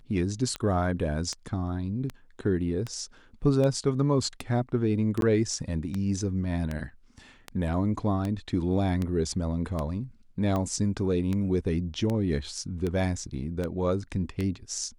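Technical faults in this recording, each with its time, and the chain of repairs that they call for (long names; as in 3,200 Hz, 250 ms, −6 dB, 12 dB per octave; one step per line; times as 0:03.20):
scratch tick 78 rpm −18 dBFS
0:05.21–0:05.22: drop-out 12 ms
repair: click removal
repair the gap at 0:05.21, 12 ms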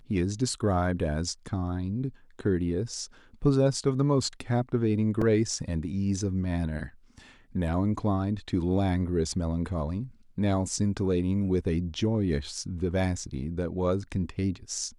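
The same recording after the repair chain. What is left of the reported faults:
none of them is left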